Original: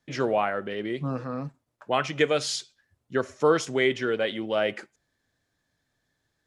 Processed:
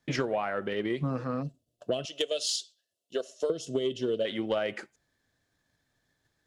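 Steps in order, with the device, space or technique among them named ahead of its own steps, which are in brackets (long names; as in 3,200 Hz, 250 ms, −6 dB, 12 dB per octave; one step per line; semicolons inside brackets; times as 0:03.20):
0:01.42–0:04.26: gain on a spectral selection 720–2,600 Hz −19 dB
0:02.05–0:03.50: high-pass filter 710 Hz 12 dB per octave
drum-bus smash (transient designer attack +8 dB, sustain 0 dB; downward compressor 10 to 1, threshold −24 dBFS, peak gain reduction 14 dB; soft clipping −17 dBFS, distortion −22 dB)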